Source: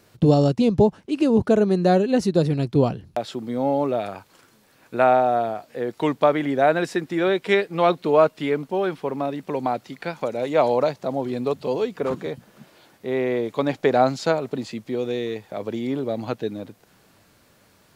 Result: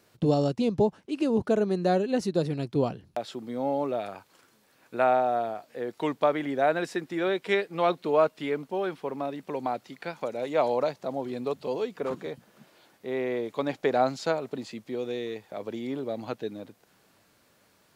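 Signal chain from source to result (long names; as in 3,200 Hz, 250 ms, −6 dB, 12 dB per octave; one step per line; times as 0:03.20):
low-shelf EQ 140 Hz −8 dB
level −5.5 dB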